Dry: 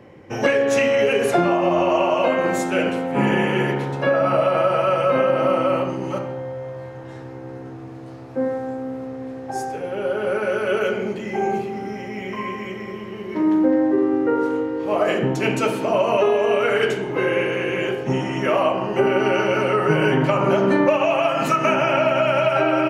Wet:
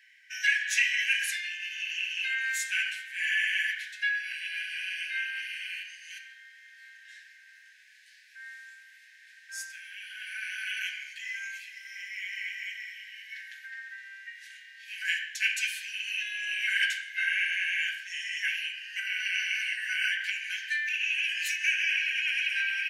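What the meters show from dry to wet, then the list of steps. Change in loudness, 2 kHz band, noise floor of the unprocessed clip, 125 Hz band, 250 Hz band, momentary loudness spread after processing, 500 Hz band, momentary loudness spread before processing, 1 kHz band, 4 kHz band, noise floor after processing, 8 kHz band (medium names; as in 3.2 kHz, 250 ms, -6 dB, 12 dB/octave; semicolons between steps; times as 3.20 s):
-9.0 dB, -1.0 dB, -36 dBFS, under -40 dB, under -40 dB, 17 LU, under -40 dB, 13 LU, under -40 dB, 0.0 dB, -56 dBFS, 0.0 dB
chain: brick-wall FIR high-pass 1.5 kHz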